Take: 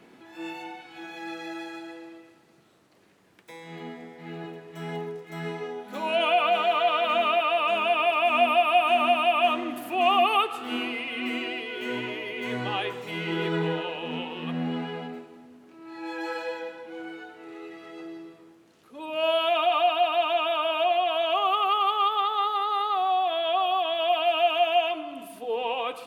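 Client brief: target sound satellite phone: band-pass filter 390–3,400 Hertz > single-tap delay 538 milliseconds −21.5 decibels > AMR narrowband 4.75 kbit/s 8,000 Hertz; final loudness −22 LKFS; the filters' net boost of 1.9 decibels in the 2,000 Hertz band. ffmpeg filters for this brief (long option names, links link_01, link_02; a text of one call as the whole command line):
ffmpeg -i in.wav -af "highpass=390,lowpass=3400,equalizer=frequency=2000:width_type=o:gain=4,aecho=1:1:538:0.0841,volume=3.5dB" -ar 8000 -c:a libopencore_amrnb -b:a 4750 out.amr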